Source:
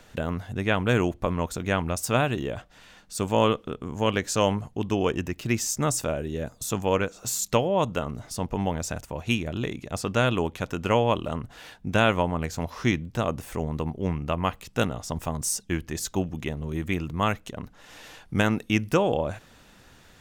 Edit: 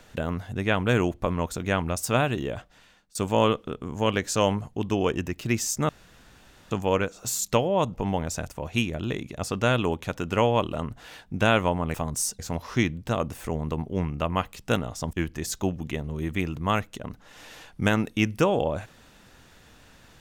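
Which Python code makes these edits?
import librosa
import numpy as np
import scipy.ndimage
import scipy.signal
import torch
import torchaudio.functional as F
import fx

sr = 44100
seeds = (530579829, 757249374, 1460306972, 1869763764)

y = fx.edit(x, sr, fx.fade_out_to(start_s=2.57, length_s=0.58, floor_db=-22.0),
    fx.room_tone_fill(start_s=5.89, length_s=0.82),
    fx.cut(start_s=7.94, length_s=0.53),
    fx.move(start_s=15.21, length_s=0.45, to_s=12.47), tone=tone)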